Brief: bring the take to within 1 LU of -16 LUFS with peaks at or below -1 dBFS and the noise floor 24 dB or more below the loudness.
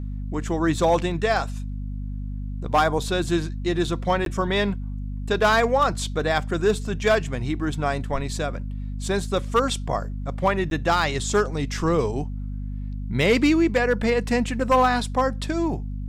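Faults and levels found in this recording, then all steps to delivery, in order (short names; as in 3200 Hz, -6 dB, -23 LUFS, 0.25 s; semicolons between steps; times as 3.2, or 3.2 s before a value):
dropouts 2; longest dropout 12 ms; hum 50 Hz; harmonics up to 250 Hz; hum level -28 dBFS; loudness -23.5 LUFS; peak -10.0 dBFS; loudness target -16.0 LUFS
-> interpolate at 4.25/10.7, 12 ms; notches 50/100/150/200/250 Hz; gain +7.5 dB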